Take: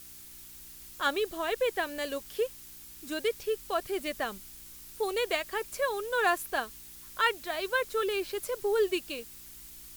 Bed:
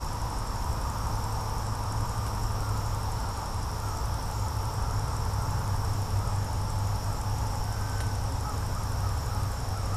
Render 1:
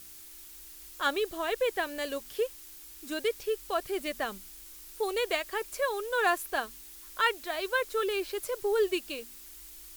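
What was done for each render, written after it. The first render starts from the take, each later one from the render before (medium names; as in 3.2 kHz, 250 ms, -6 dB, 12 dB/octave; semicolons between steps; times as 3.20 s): de-hum 60 Hz, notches 4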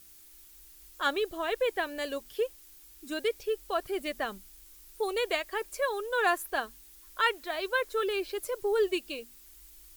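noise reduction 7 dB, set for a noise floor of -49 dBFS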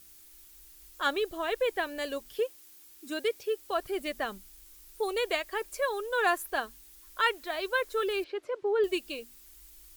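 2.39–3.71 s: high-pass 110 Hz; 8.24–8.84 s: band-pass 150–2600 Hz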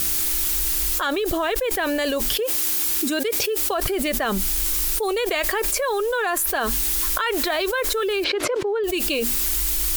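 level flattener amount 100%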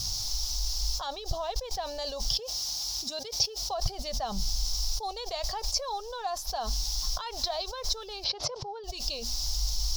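FFT filter 140 Hz 0 dB, 320 Hz -28 dB, 790 Hz -3 dB, 1.6 kHz -24 dB, 2.4 kHz -22 dB, 5.4 kHz +6 dB, 8.2 kHz -21 dB, 15 kHz -24 dB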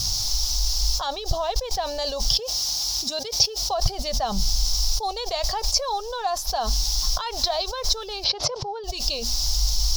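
trim +7.5 dB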